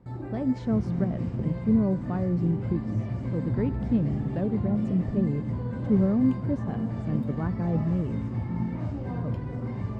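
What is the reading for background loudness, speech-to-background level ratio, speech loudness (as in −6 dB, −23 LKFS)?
−32.0 LKFS, 3.5 dB, −28.5 LKFS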